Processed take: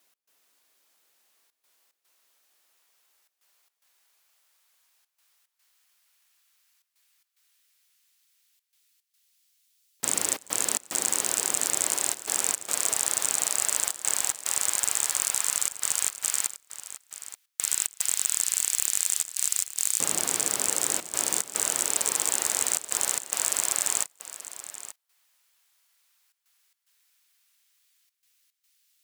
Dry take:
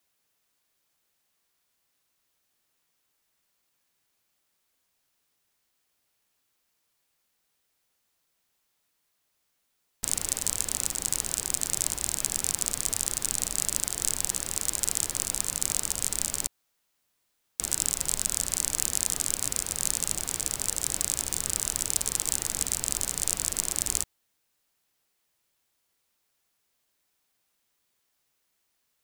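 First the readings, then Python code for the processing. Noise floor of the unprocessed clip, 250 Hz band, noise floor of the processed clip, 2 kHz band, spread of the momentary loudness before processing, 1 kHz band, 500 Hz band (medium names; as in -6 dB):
-76 dBFS, -1.0 dB, -82 dBFS, +5.5 dB, 2 LU, +6.0 dB, +4.0 dB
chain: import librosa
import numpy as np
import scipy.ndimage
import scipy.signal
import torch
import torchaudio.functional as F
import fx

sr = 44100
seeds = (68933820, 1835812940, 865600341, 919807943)

p1 = fx.filter_lfo_highpass(x, sr, shape='saw_up', hz=0.1, low_hz=240.0, high_hz=3500.0, q=0.76)
p2 = fx.fold_sine(p1, sr, drive_db=10, ceiling_db=-1.5)
p3 = p1 + (p2 * librosa.db_to_amplitude(-7.0))
p4 = fx.step_gate(p3, sr, bpm=110, pattern='x.xxxxxxxxx.x', floor_db=-24.0, edge_ms=4.5)
p5 = p4 + 10.0 ** (-14.0 / 20.0) * np.pad(p4, (int(880 * sr / 1000.0), 0))[:len(p4)]
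y = p5 * librosa.db_to_amplitude(-2.5)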